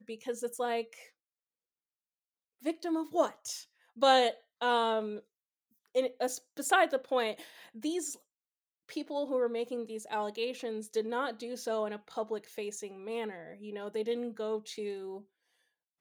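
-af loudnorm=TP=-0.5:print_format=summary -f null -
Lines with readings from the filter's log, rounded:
Input Integrated:    -34.0 LUFS
Input True Peak:     -11.5 dBTP
Input LRA:             7.8 LU
Input Threshold:     -44.5 LUFS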